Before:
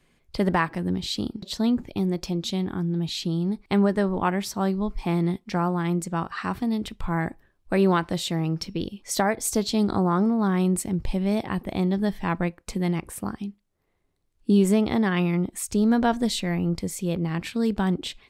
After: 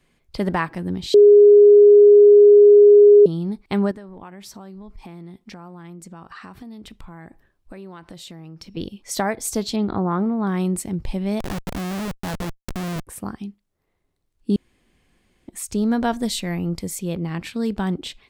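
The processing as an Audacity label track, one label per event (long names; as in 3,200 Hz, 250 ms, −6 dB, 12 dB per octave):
1.140000	3.260000	beep over 412 Hz −6 dBFS
3.910000	8.770000	downward compressor, threshold −36 dBFS
9.760000	10.470000	low-pass filter 3,300 Hz 24 dB per octave
11.400000	13.070000	comparator with hysteresis flips at −29.5 dBFS
14.560000	15.480000	fill with room tone
16.000000	16.990000	high-shelf EQ 8,300 Hz +7.5 dB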